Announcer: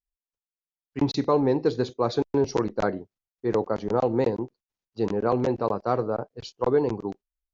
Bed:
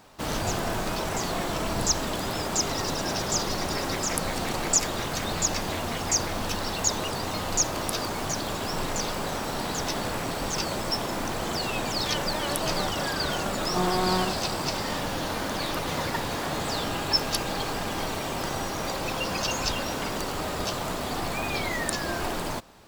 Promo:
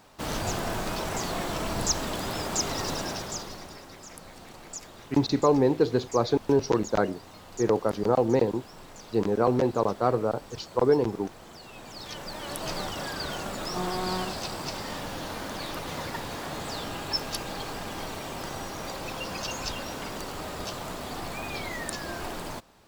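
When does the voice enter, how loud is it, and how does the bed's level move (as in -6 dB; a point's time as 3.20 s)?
4.15 s, +0.5 dB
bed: 2.97 s -2 dB
3.86 s -17.5 dB
11.63 s -17.5 dB
12.69 s -5.5 dB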